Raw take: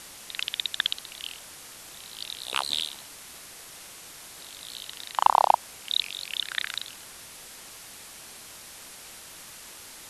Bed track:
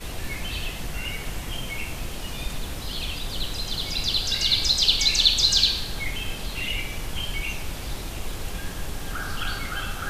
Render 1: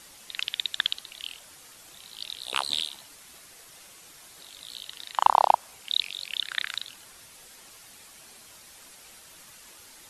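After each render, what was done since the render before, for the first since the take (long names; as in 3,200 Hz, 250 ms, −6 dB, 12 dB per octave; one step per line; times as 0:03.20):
broadband denoise 7 dB, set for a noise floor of −46 dBFS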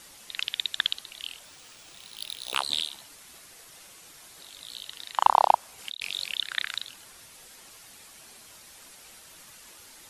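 0:01.45–0:02.55: bad sample-rate conversion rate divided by 3×, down none, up hold
0:05.78–0:06.38: compressor whose output falls as the input rises −35 dBFS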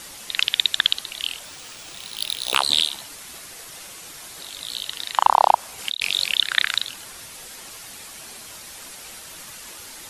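boost into a limiter +10.5 dB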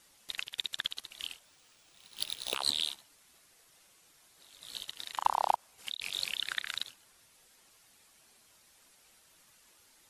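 brickwall limiter −12 dBFS, peak gain reduction 11 dB
expander for the loud parts 2.5 to 1, over −39 dBFS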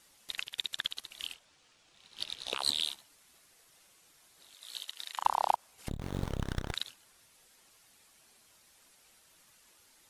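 0:01.34–0:02.58: high-frequency loss of the air 54 metres
0:04.54–0:05.21: high-pass filter 790 Hz 6 dB per octave
0:05.88–0:06.74: windowed peak hold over 17 samples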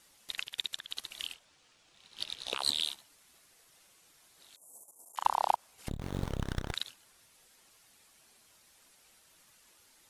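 0:00.79–0:01.22: compressor whose output falls as the input rises −41 dBFS
0:04.56–0:05.16: inverse Chebyshev band-stop filter 1,800–3,900 Hz, stop band 60 dB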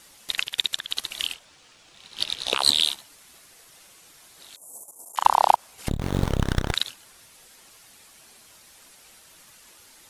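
level +11.5 dB
brickwall limiter −2 dBFS, peak gain reduction 1 dB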